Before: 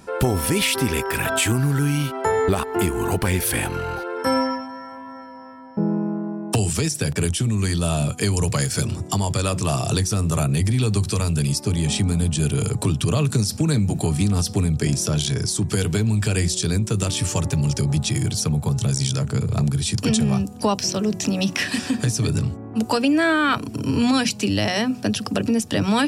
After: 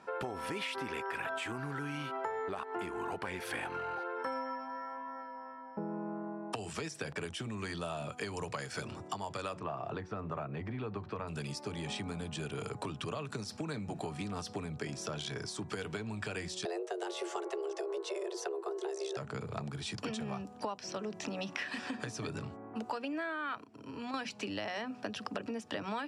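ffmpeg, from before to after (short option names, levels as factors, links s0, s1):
-filter_complex "[0:a]asplit=3[s0][s1][s2];[s0]afade=t=out:st=9.58:d=0.02[s3];[s1]lowpass=1800,afade=t=in:st=9.58:d=0.02,afade=t=out:st=11.27:d=0.02[s4];[s2]afade=t=in:st=11.27:d=0.02[s5];[s3][s4][s5]amix=inputs=3:normalize=0,asettb=1/sr,asplit=3[s6][s7][s8];[s6]atrim=end=16.654[s9];[s7]atrim=start=16.65:end=19.17,asetpts=PTS-STARTPTS,afade=t=in:d=0.004:c=qsin,afade=t=out:st=2.516:d=0.004:c=qsin,afreqshift=260[s10];[s8]atrim=start=19.166[s11];[s9][s10]acrossfade=d=0.004:c1=hsin:c2=qsin[s12];[s12][s11]acrossfade=d=0.004:c1=qsin:c2=hsin,asplit=3[s13][s14][s15];[s13]atrim=end=23.642[s16];[s14]atrim=start=23.638:end=24.142,asetpts=PTS-STARTPTS,volume=0.316[s17];[s15]atrim=start=24.138[s18];[s16][s17]acrossfade=d=0.004:c1=hsin:c2=hsin[s19];[s19][s18]acrossfade=d=0.004:c1=hsin:c2=hsin,lowpass=1100,aderivative,acompressor=threshold=0.00316:ratio=6,volume=5.62"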